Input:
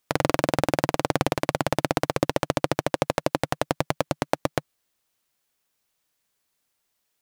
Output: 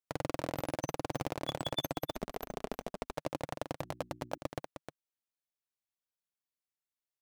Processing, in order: spectral noise reduction 29 dB; on a send: delay 309 ms -12 dB; on the sum: waveshaping leveller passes 2; 2.11–3.13 s: ring modulator 110 Hz; 3.80–4.38 s: hum notches 60/120/180/240/300/360 Hz; trim +10.5 dB

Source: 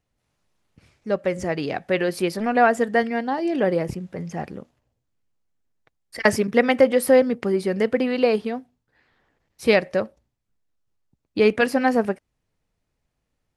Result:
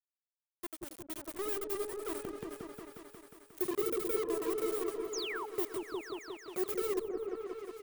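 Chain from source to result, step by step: sorted samples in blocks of 8 samples; inverse Chebyshev band-stop 490–4600 Hz, stop band 40 dB; peaking EQ 100 Hz -13.5 dB 1.1 oct; comb 1.4 ms, depth 46%; small samples zeroed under -29.5 dBFS; painted sound fall, 8.89–9.46 s, 460–4200 Hz -35 dBFS; on a send: delay with an opening low-pass 311 ms, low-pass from 200 Hz, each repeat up 1 oct, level 0 dB; on the sum: speed mistake 45 rpm record played at 78 rpm; trim -5 dB

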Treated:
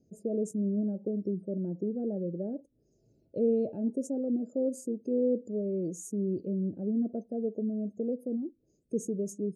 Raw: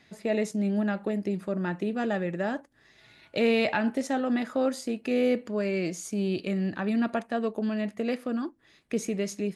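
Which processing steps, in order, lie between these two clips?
spectral gate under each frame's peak -25 dB strong; elliptic band-stop 510–7000 Hz, stop band 40 dB; trim -2 dB

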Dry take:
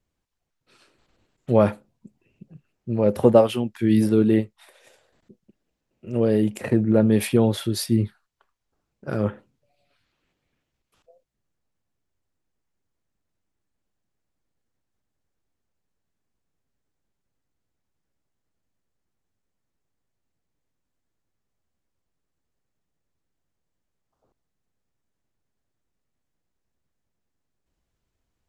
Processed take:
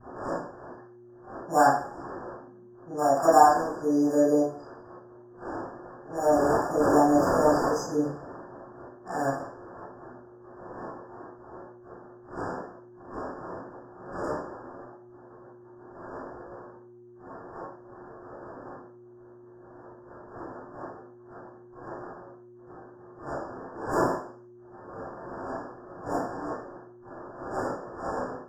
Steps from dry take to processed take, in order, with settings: wind noise 330 Hz -31 dBFS; expander -42 dBFS; three-band isolator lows -17 dB, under 450 Hz, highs -21 dB, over 2.9 kHz; saturation -12 dBFS, distortion -17 dB; pitch shift +5 st; mains buzz 120 Hz, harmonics 3, -53 dBFS -4 dB/octave; in parallel at -10 dB: sample-and-hold 14×; on the sum: level-controlled noise filter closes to 1.7 kHz, open at -26.5 dBFS; brick-wall FIR band-stop 1.8–4.7 kHz; reverberation RT60 0.50 s, pre-delay 26 ms, DRR -9 dB; trim -3.5 dB

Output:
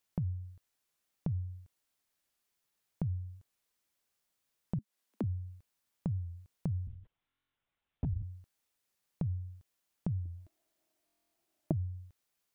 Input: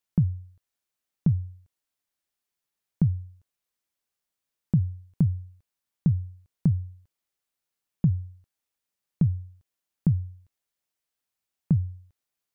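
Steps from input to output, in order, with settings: 4.79–5.24 s: steep high-pass 200 Hz 96 dB/octave; peak limiter -23 dBFS, peak gain reduction 10.5 dB; compression 6:1, threshold -36 dBFS, peak gain reduction 10 dB; 6.87–8.23 s: LPC vocoder at 8 kHz whisper; 10.26–11.72 s: small resonant body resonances 330/640 Hz, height 17 dB, ringing for 45 ms; buffer glitch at 7.27/11.05 s, samples 1024, times 11; warped record 45 rpm, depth 100 cents; trim +3.5 dB

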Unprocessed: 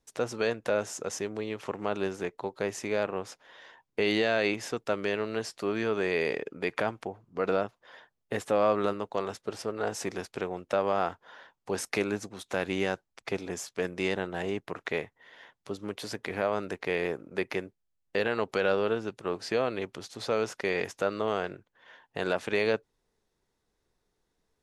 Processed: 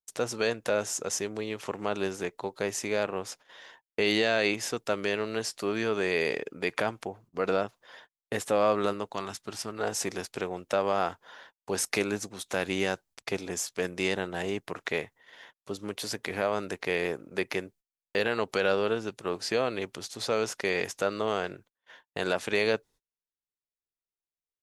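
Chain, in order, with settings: 9.14–9.79 s: peaking EQ 490 Hz -11 dB 0.63 oct; gate -54 dBFS, range -30 dB; treble shelf 4 kHz +9 dB

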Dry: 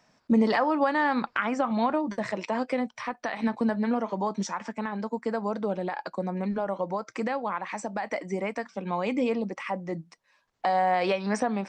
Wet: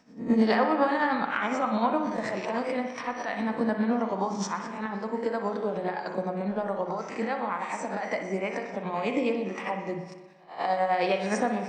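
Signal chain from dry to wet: reverse spectral sustain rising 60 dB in 0.40 s; tremolo 9.7 Hz, depth 57%; thinning echo 61 ms, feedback 58%, level -15 dB; spring tank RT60 1.2 s, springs 41/58 ms, chirp 65 ms, DRR 5.5 dB

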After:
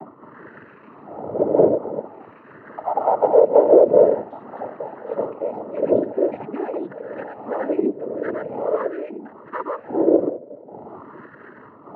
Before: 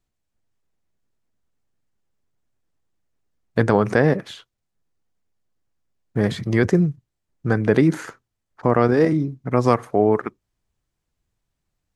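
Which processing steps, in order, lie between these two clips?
formants replaced by sine waves; wind noise 450 Hz -29 dBFS; resonant low shelf 490 Hz +11 dB, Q 1.5; compression 2.5:1, threshold -34 dBFS, peak gain reduction 24 dB; wah-wah 0.46 Hz 450–1400 Hz, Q 15; ever faster or slower copies 216 ms, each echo +3 st, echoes 3, each echo -6 dB; distance through air 490 m; noise-vocoded speech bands 12; loudness maximiser +28.5 dB; trim -1 dB

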